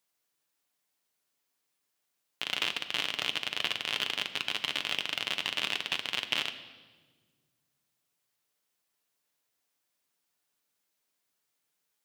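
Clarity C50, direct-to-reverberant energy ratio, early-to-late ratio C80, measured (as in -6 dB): 12.0 dB, 7.0 dB, 13.5 dB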